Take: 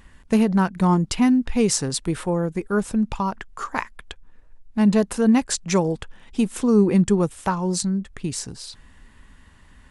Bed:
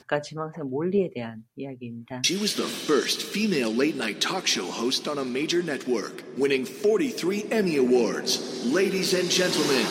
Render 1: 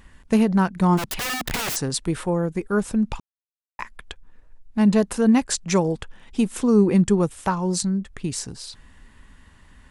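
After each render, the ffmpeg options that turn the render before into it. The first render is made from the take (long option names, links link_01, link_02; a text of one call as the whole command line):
ffmpeg -i in.wav -filter_complex "[0:a]asplit=3[link_01][link_02][link_03];[link_01]afade=type=out:start_time=0.97:duration=0.02[link_04];[link_02]aeval=exprs='(mod(12.6*val(0)+1,2)-1)/12.6':channel_layout=same,afade=type=in:start_time=0.97:duration=0.02,afade=type=out:start_time=1.75:duration=0.02[link_05];[link_03]afade=type=in:start_time=1.75:duration=0.02[link_06];[link_04][link_05][link_06]amix=inputs=3:normalize=0,asplit=3[link_07][link_08][link_09];[link_07]atrim=end=3.2,asetpts=PTS-STARTPTS,afade=type=out:start_time=3.196:duration=0.004:curve=hsin[link_10];[link_08]atrim=start=3.2:end=3.79,asetpts=PTS-STARTPTS,volume=0[link_11];[link_09]atrim=start=3.79,asetpts=PTS-STARTPTS,afade=type=in:duration=0.004:curve=hsin[link_12];[link_10][link_11][link_12]concat=n=3:v=0:a=1" out.wav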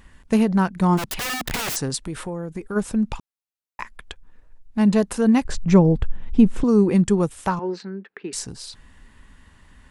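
ffmpeg -i in.wav -filter_complex "[0:a]asplit=3[link_01][link_02][link_03];[link_01]afade=type=out:start_time=1.95:duration=0.02[link_04];[link_02]acompressor=threshold=-26dB:ratio=4:attack=3.2:release=140:knee=1:detection=peak,afade=type=in:start_time=1.95:duration=0.02,afade=type=out:start_time=2.75:duration=0.02[link_05];[link_03]afade=type=in:start_time=2.75:duration=0.02[link_06];[link_04][link_05][link_06]amix=inputs=3:normalize=0,asettb=1/sr,asplit=3[link_07][link_08][link_09];[link_07]atrim=end=5.454[link_10];[link_08]atrim=start=5.45:end=6.64,asetpts=PTS-STARTPTS,afade=type=in:duration=0.004:curve=qsin,afade=type=out:start_time=1.186:duration=0.004:curve=qsin,aemphasis=mode=reproduction:type=riaa[link_11];[link_09]atrim=start=6.636[link_12];[link_10][link_11]acrossfade=duration=0.004:curve1=hsin:curve2=qsin[link_13];[link_13][link_12]acrossfade=duration=0.004:curve1=qsin:curve2=hsin,asettb=1/sr,asplit=3[link_14][link_15][link_16];[link_14]atrim=end=7.594[link_17];[link_15]atrim=start=7.59:end=8.33,asetpts=PTS-STARTPTS,afade=type=in:duration=0.004:curve=qsin,afade=type=out:start_time=0.736:duration=0.004:curve=qsin,highpass=frequency=250:width=0.5412,highpass=frequency=250:width=1.3066,equalizer=frequency=260:width_type=q:width=4:gain=-9,equalizer=frequency=420:width_type=q:width=4:gain=7,equalizer=frequency=620:width_type=q:width=4:gain=-6,equalizer=frequency=1100:width_type=q:width=4:gain=-4,equalizer=frequency=1600:width_type=q:width=4:gain=6,equalizer=frequency=3300:width_type=q:width=4:gain=-7,lowpass=frequency=3400:width=0.5412,lowpass=frequency=3400:width=1.3066[link_18];[link_16]atrim=start=8.326[link_19];[link_17][link_18]acrossfade=duration=0.004:curve1=hsin:curve2=qsin[link_20];[link_20][link_19]acrossfade=duration=0.004:curve1=qsin:curve2=hsin" out.wav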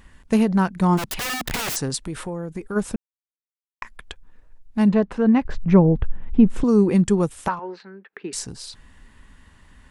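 ffmpeg -i in.wav -filter_complex "[0:a]asettb=1/sr,asplit=3[link_01][link_02][link_03];[link_01]atrim=end=4.894[link_04];[link_02]atrim=start=4.89:end=6.5,asetpts=PTS-STARTPTS,afade=type=in:duration=0.004:curve=qsin,afade=type=out:start_time=1.606:duration=0.004:curve=qsin,lowpass=2400[link_05];[link_03]atrim=start=6.496[link_06];[link_04][link_05]acrossfade=duration=0.004:curve1=hsin:curve2=qsin[link_07];[link_07][link_06]acrossfade=duration=0.004:curve1=qsin:curve2=hsin,asettb=1/sr,asplit=3[link_08][link_09][link_10];[link_08]atrim=end=7.484[link_11];[link_09]atrim=start=7.48:end=8.13,asetpts=PTS-STARTPTS,afade=type=in:duration=0.004:curve=qsin,afade=type=out:start_time=0.646:duration=0.004:curve=qsin,acrossover=split=500 3700:gain=0.251 1 0.141[link_12][link_13][link_14];[link_12][link_13][link_14]amix=inputs=3:normalize=0[link_15];[link_10]atrim=start=8.126[link_16];[link_11][link_15]acrossfade=duration=0.004:curve1=hsin:curve2=qsin[link_17];[link_17][link_16]acrossfade=duration=0.004:curve1=qsin:curve2=hsin,asplit=3[link_18][link_19][link_20];[link_18]atrim=end=2.96,asetpts=PTS-STARTPTS,afade=type=out:start_time=2.956:duration=0.004:curve=hsin[link_21];[link_19]atrim=start=2.96:end=3.82,asetpts=PTS-STARTPTS,volume=0[link_22];[link_20]atrim=start=3.82,asetpts=PTS-STARTPTS,afade=type=in:duration=0.004:curve=hsin[link_23];[link_21][link_22][link_23]concat=n=3:v=0:a=1" out.wav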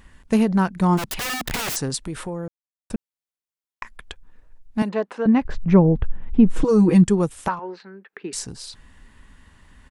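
ffmpeg -i in.wav -filter_complex "[0:a]asettb=1/sr,asplit=3[link_01][link_02][link_03];[link_01]atrim=end=4.824[link_04];[link_02]atrim=start=4.82:end=5.26,asetpts=PTS-STARTPTS,afade=type=in:duration=0.004:curve=qsin,afade=type=out:start_time=0.436:duration=0.004:curve=qsin,highpass=410[link_05];[link_03]atrim=start=5.256[link_06];[link_04][link_05]acrossfade=duration=0.004:curve1=hsin:curve2=qsin[link_07];[link_07][link_06]acrossfade=duration=0.004:curve1=qsin:curve2=hsin,asplit=3[link_08][link_09][link_10];[link_08]afade=type=out:start_time=6.47:duration=0.02[link_11];[link_09]aecho=1:1:6.3:0.94,afade=type=in:start_time=6.47:duration=0.02,afade=type=out:start_time=7.03:duration=0.02[link_12];[link_10]afade=type=in:start_time=7.03:duration=0.02[link_13];[link_11][link_12][link_13]amix=inputs=3:normalize=0,asplit=3[link_14][link_15][link_16];[link_14]atrim=end=2.48,asetpts=PTS-STARTPTS,afade=type=out:start_time=2.476:duration=0.004:curve=hsin[link_17];[link_15]atrim=start=2.48:end=2.9,asetpts=PTS-STARTPTS,volume=0[link_18];[link_16]atrim=start=2.9,asetpts=PTS-STARTPTS,afade=type=in:duration=0.004:curve=hsin[link_19];[link_17][link_18][link_19]concat=n=3:v=0:a=1" out.wav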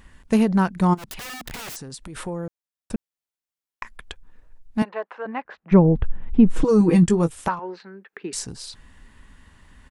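ffmpeg -i in.wav -filter_complex "[0:a]asplit=3[link_01][link_02][link_03];[link_01]afade=type=out:start_time=0.93:duration=0.02[link_04];[link_02]acompressor=threshold=-33dB:ratio=8:attack=3.2:release=140:knee=1:detection=peak,afade=type=in:start_time=0.93:duration=0.02,afade=type=out:start_time=2.15:duration=0.02[link_05];[link_03]afade=type=in:start_time=2.15:duration=0.02[link_06];[link_04][link_05][link_06]amix=inputs=3:normalize=0,asplit=3[link_07][link_08][link_09];[link_07]afade=type=out:start_time=4.83:duration=0.02[link_10];[link_08]highpass=690,lowpass=2300,afade=type=in:start_time=4.83:duration=0.02,afade=type=out:start_time=5.71:duration=0.02[link_11];[link_09]afade=type=in:start_time=5.71:duration=0.02[link_12];[link_10][link_11][link_12]amix=inputs=3:normalize=0,asettb=1/sr,asplit=3[link_13][link_14][link_15];[link_13]atrim=end=6.794[link_16];[link_14]atrim=start=6.79:end=7.35,asetpts=PTS-STARTPTS,afade=type=in:duration=0.004:curve=qsin,afade=type=out:start_time=0.556:duration=0.004:curve=qsin,asplit=2[link_17][link_18];[link_18]adelay=18,volume=-9dB[link_19];[link_17][link_19]amix=inputs=2:normalize=0,atrim=end_sample=24696[link_20];[link_15]atrim=start=7.346[link_21];[link_16][link_20]acrossfade=duration=0.004:curve1=hsin:curve2=qsin[link_22];[link_22][link_21]acrossfade=duration=0.004:curve1=qsin:curve2=hsin" out.wav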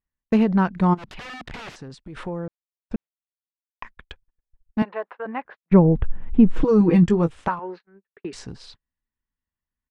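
ffmpeg -i in.wav -af "agate=range=-40dB:threshold=-38dB:ratio=16:detection=peak,lowpass=3300" out.wav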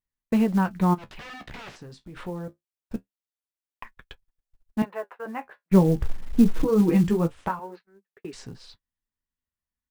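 ffmpeg -i in.wav -af "flanger=delay=7.4:depth=9.7:regen=-45:speed=0.24:shape=sinusoidal,acrusher=bits=7:mode=log:mix=0:aa=0.000001" out.wav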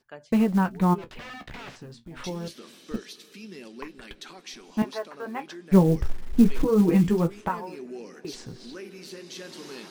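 ffmpeg -i in.wav -i bed.wav -filter_complex "[1:a]volume=-18dB[link_01];[0:a][link_01]amix=inputs=2:normalize=0" out.wav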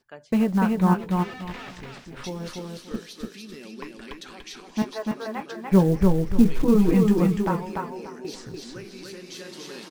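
ffmpeg -i in.wav -af "aecho=1:1:292|584|876:0.708|0.17|0.0408" out.wav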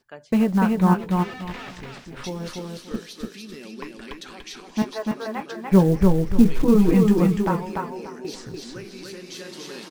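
ffmpeg -i in.wav -af "volume=2dB" out.wav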